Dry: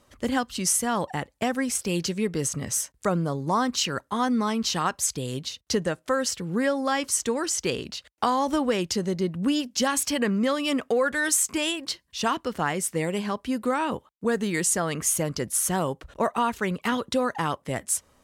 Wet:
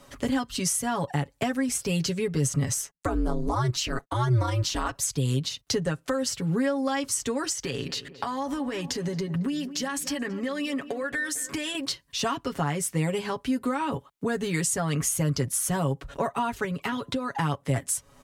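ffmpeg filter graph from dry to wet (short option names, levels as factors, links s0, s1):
-filter_complex "[0:a]asettb=1/sr,asplit=3[s0][s1][s2];[s0]atrim=end=2.744[s3];[s1]atrim=start=2.74:end=4.95,asetpts=PTS-STARTPTS,afade=t=in:d=0.004:c=qsin,afade=t=out:st=2.206:d=0.004:c=qsin,agate=range=0.0178:threshold=0.00398:ratio=16:release=100:detection=peak,aeval=exprs='val(0)*sin(2*PI*120*n/s)':c=same[s4];[s2]atrim=start=4.946[s5];[s3][s4]acrossfade=d=0.004:c1=hsin:c2=qsin[s6];[s6][s5]acrossfade=d=0.004:c1=qsin:c2=hsin,asettb=1/sr,asplit=3[s7][s8][s9];[s7]atrim=end=7.524[s10];[s8]atrim=start=7.52:end=11.75,asetpts=PTS-STARTPTS,afade=t=in:d=0.004:c=qsin,afade=t=out:st=4.226:d=0.004:c=qsin,equalizer=f=1800:t=o:w=0.25:g=7,acompressor=threshold=0.0316:ratio=5:attack=3.2:release=140:knee=1:detection=peak,asplit=2[s11][s12];[s12]adelay=224,lowpass=f=1500:p=1,volume=0.168,asplit=2[s13][s14];[s14]adelay=224,lowpass=f=1500:p=1,volume=0.52,asplit=2[s15][s16];[s16]adelay=224,lowpass=f=1500:p=1,volume=0.52,asplit=2[s17][s18];[s18]adelay=224,lowpass=f=1500:p=1,volume=0.52,asplit=2[s19][s20];[s20]adelay=224,lowpass=f=1500:p=1,volume=0.52[s21];[s11][s13][s15][s17][s19][s21]amix=inputs=6:normalize=0,atrim=end_sample=186543[s22];[s9]atrim=start=11.746[s23];[s10][s22]acrossfade=d=0.004:c1=hsin:c2=qsin[s24];[s24][s23]acrossfade=d=0.004:c1=qsin:c2=hsin,asettb=1/sr,asplit=3[s25][s26][s27];[s25]atrim=end=16.644[s28];[s26]atrim=start=16.64:end=17.36,asetpts=PTS-STARTPTS,afade=t=in:d=0.004:c=qsin,afade=t=out:st=0.716:d=0.004:c=qsin,bandreject=f=340.8:t=h:w=4,bandreject=f=681.6:t=h:w=4,bandreject=f=1022.4:t=h:w=4,acrossover=split=2200|6600[s29][s30][s31];[s29]acompressor=threshold=0.0355:ratio=4[s32];[s30]acompressor=threshold=0.00794:ratio=4[s33];[s31]acompressor=threshold=0.00141:ratio=4[s34];[s32][s33][s34]amix=inputs=3:normalize=0[s35];[s27]atrim=start=17.356[s36];[s28][s35]acrossfade=d=0.004:c1=hsin:c2=qsin[s37];[s37][s36]acrossfade=d=0.004:c1=qsin:c2=hsin,aecho=1:1:7.2:0.71,acrossover=split=140[s38][s39];[s39]acompressor=threshold=0.0126:ratio=2.5[s40];[s38][s40]amix=inputs=2:normalize=0,volume=2.24"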